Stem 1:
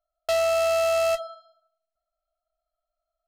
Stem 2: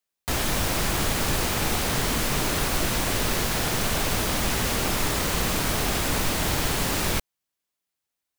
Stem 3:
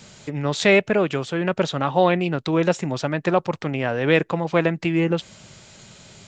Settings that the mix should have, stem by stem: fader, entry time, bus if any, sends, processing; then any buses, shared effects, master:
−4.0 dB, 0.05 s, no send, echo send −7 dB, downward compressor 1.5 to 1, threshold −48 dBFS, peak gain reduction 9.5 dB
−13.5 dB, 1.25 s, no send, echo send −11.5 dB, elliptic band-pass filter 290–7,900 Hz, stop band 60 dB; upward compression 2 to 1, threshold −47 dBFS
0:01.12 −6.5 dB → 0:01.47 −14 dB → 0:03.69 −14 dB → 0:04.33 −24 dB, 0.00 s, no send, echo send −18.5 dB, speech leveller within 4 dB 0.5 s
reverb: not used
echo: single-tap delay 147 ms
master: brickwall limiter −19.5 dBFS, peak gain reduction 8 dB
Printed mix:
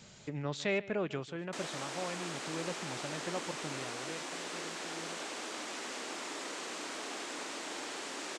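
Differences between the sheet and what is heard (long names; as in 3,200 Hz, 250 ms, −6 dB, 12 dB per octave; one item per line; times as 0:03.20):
stem 1: muted
stem 3 −6.5 dB → −13.5 dB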